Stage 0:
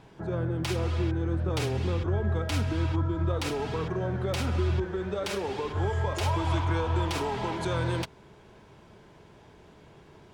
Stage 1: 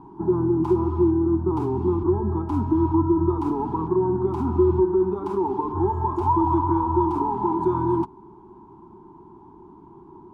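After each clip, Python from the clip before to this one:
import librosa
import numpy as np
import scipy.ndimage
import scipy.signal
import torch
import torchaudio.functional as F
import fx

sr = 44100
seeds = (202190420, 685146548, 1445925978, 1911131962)

y = fx.curve_eq(x, sr, hz=(130.0, 370.0, 540.0, 930.0, 1800.0, 4500.0, 12000.0), db=(0, 14, -25, 15, -22, -23, -19))
y = fx.rider(y, sr, range_db=10, speed_s=2.0)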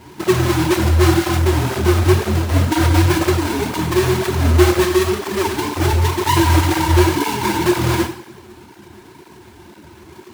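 y = fx.halfwave_hold(x, sr)
y = fx.rev_double_slope(y, sr, seeds[0], early_s=0.47, late_s=1.7, knee_db=-19, drr_db=1.5)
y = fx.flanger_cancel(y, sr, hz=2.0, depth_ms=7.3)
y = y * 10.0 ** (1.5 / 20.0)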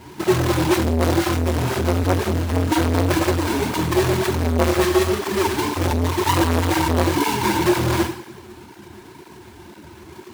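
y = fx.transformer_sat(x, sr, knee_hz=720.0)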